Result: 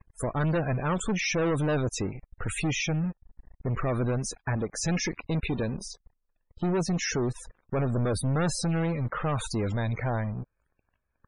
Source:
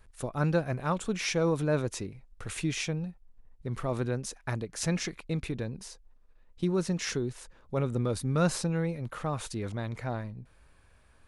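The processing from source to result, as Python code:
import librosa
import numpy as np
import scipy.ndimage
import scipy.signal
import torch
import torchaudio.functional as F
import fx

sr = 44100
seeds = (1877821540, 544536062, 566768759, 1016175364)

y = fx.lowpass(x, sr, hz=3200.0, slope=12, at=(2.96, 3.67), fade=0.02)
y = fx.dynamic_eq(y, sr, hz=120.0, q=4.6, threshold_db=-51.0, ratio=4.0, max_db=-5, at=(4.54, 6.78))
y = fx.leveller(y, sr, passes=5)
y = fx.spec_topn(y, sr, count=64)
y = y * 10.0 ** (-9.0 / 20.0)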